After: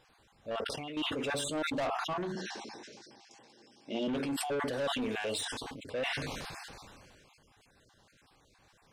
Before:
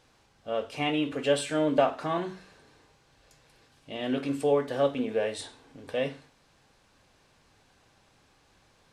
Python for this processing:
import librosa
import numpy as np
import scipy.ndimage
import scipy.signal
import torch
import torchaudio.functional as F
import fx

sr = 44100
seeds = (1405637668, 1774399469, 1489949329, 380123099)

y = fx.spec_dropout(x, sr, seeds[0], share_pct=34)
y = fx.level_steps(y, sr, step_db=20, at=(0.56, 0.97))
y = fx.high_shelf(y, sr, hz=2100.0, db=7.0, at=(4.73, 5.45))
y = 10.0 ** (-29.0 / 20.0) * np.tanh(y / 10.0 ** (-29.0 / 20.0))
y = fx.cabinet(y, sr, low_hz=140.0, low_slope=24, high_hz=8500.0, hz=(150.0, 220.0, 350.0, 830.0, 1300.0, 5400.0), db=(-9, 9, 9, 7, -7, 9), at=(2.35, 4.08))
y = fx.sustainer(y, sr, db_per_s=24.0)
y = y * 10.0 ** (-1.0 / 20.0)